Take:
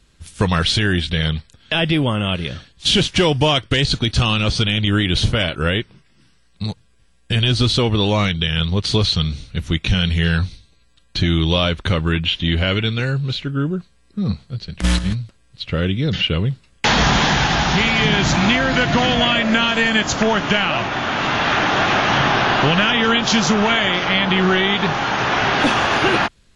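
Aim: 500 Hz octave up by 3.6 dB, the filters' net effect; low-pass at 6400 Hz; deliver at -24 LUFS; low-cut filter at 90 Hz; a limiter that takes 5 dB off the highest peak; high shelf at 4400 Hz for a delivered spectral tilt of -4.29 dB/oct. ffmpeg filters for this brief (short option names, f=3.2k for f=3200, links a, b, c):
-af "highpass=90,lowpass=6.4k,equalizer=f=500:t=o:g=4.5,highshelf=f=4.4k:g=7,volume=-7dB,alimiter=limit=-13dB:level=0:latency=1"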